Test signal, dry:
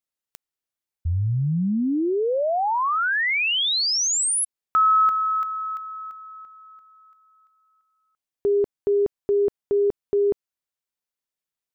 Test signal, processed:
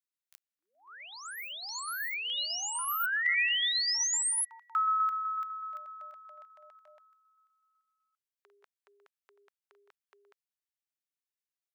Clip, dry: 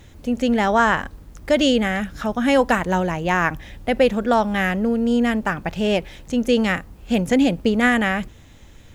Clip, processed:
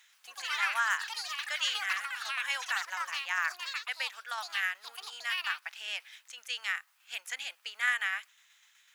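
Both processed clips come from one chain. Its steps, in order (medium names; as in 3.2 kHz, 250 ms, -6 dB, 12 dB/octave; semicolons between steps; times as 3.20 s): ever faster or slower copies 92 ms, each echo +7 st, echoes 3, each echo -6 dB; tremolo saw down 8 Hz, depth 35%; high-pass 1.3 kHz 24 dB/octave; trim -6 dB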